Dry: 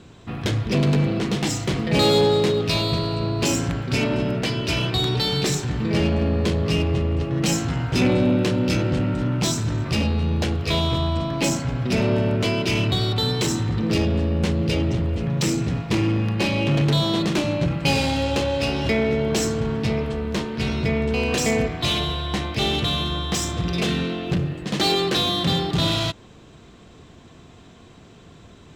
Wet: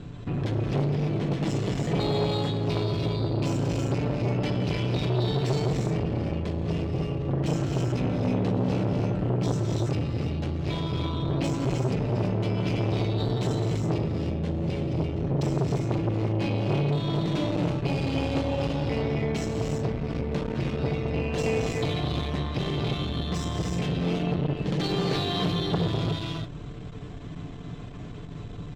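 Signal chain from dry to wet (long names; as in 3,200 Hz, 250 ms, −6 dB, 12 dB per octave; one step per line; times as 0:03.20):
low-shelf EQ 220 Hz +11 dB
downward compressor 6 to 1, threshold −24 dBFS, peak gain reduction 14 dB
high-shelf EQ 5,900 Hz −11 dB
comb filter 6.9 ms, depth 48%
reverb whose tail is shaped and stops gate 360 ms rising, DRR −0.5 dB
saturating transformer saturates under 590 Hz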